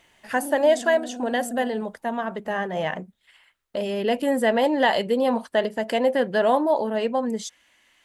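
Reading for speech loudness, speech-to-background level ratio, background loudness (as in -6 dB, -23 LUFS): -23.5 LUFS, 13.5 dB, -37.0 LUFS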